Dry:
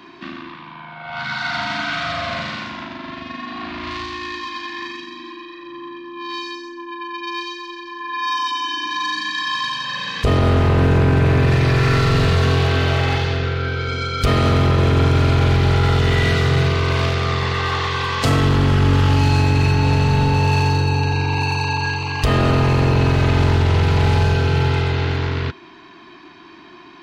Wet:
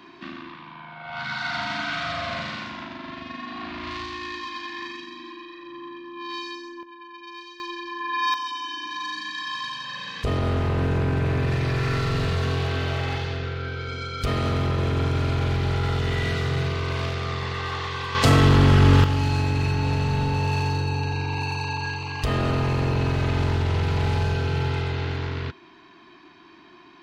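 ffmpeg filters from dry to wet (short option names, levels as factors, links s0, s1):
-af "asetnsamples=n=441:p=0,asendcmd='6.83 volume volume -13.5dB;7.6 volume volume -1dB;8.34 volume volume -8.5dB;18.15 volume volume 0dB;19.04 volume volume -7.5dB',volume=0.562"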